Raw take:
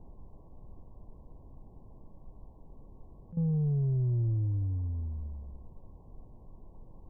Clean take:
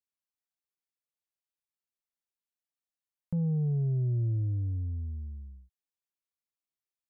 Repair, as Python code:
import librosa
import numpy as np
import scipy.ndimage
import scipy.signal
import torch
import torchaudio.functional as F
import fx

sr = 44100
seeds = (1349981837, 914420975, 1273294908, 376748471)

y = fx.highpass(x, sr, hz=140.0, slope=24, at=(0.63, 0.75), fade=0.02)
y = fx.highpass(y, sr, hz=140.0, slope=24, at=(2.32, 2.44), fade=0.02)
y = fx.highpass(y, sr, hz=140.0, slope=24, at=(6.55, 6.67), fade=0.02)
y = fx.fix_interpolate(y, sr, at_s=(3.32,), length_ms=48.0)
y = fx.noise_reduce(y, sr, print_start_s=2.5, print_end_s=3.0, reduce_db=30.0)